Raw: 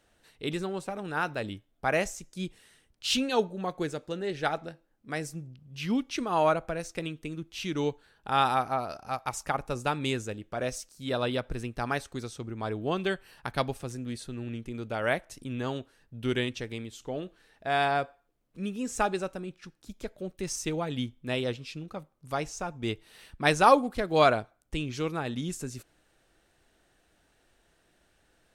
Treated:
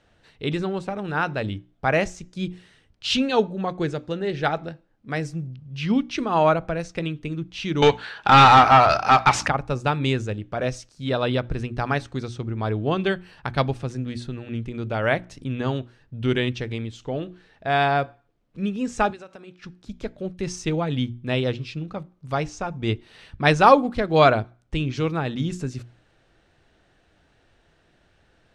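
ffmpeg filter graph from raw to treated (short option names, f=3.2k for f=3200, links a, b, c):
-filter_complex "[0:a]asettb=1/sr,asplit=3[a][b][c];[a]atrim=end=7.824[d];[b]atrim=start=7.82:end=9.48,asetpts=PTS-STARTPTS,afade=t=in:d=0.004:c=qsin,afade=t=out:st=1.656:d=0.004:c=qsin,tiltshelf=f=970:g=-6.5,aeval=exprs='val(0)+0.00891*(sin(2*PI*60*n/s)+sin(2*PI*2*60*n/s)/2+sin(2*PI*3*60*n/s)/3+sin(2*PI*4*60*n/s)/4+sin(2*PI*5*60*n/s)/5)':c=same,asplit=2[e][f];[f]highpass=f=720:p=1,volume=27dB,asoftclip=type=tanh:threshold=-8.5dB[g];[e][g]amix=inputs=2:normalize=0,lowpass=f=2.3k:p=1,volume=-6dB[h];[c]atrim=start=9.476[i];[d][h]acrossfade=d=0.004:c1=hsin:c2=qsin[j];[j][i]acrossfade=d=0.004:c1=qsin:c2=hsin,asettb=1/sr,asplit=3[k][l][m];[k]atrim=end=19.104[n];[l]atrim=start=19.1:end=19.59,asetpts=PTS-STARTPTS,afade=t=in:d=0.004:c=qsin,afade=t=out:st=0.486:d=0.004:c=qsin,highpass=f=590:p=1,acompressor=threshold=-43dB:ratio=8:attack=3.2:release=140:knee=1:detection=peak[o];[m]atrim=start=19.586[p];[n][o]acrossfade=d=0.004:c1=hsin:c2=qsin[q];[q][p]acrossfade=d=0.004:c1=qsin:c2=hsin,lowpass=4.8k,equalizer=f=110:w=0.92:g=7,bandreject=f=60:t=h:w=6,bandreject=f=120:t=h:w=6,bandreject=f=180:t=h:w=6,bandreject=f=240:t=h:w=6,bandreject=f=300:t=h:w=6,bandreject=f=360:t=h:w=6,volume=5.5dB"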